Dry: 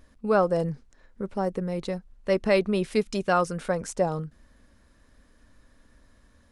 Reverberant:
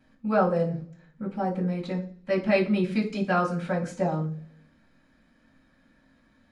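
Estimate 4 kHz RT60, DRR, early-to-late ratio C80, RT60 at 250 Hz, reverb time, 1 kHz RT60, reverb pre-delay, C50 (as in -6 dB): 0.50 s, -14.5 dB, 16.0 dB, 0.80 s, 0.50 s, 0.40 s, 3 ms, 11.5 dB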